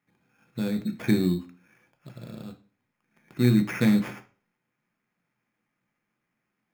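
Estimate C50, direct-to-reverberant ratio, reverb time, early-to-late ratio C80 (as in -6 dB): 14.5 dB, 6.0 dB, 0.40 s, 19.5 dB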